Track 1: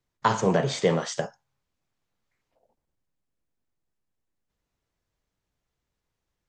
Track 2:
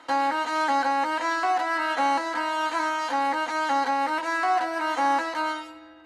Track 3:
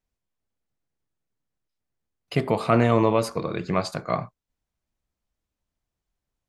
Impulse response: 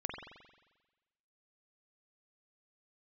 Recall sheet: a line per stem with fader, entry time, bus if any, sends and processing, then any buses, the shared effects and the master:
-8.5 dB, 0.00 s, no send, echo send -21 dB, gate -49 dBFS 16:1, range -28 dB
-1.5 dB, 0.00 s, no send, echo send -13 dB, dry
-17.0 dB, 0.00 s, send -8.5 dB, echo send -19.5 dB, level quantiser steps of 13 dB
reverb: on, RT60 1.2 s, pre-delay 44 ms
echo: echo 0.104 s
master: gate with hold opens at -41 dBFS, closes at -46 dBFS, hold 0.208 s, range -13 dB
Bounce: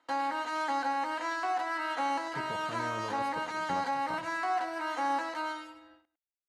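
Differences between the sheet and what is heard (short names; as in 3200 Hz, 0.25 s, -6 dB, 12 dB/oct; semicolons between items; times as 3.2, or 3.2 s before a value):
stem 1: muted; stem 2 -1.5 dB -> -8.0 dB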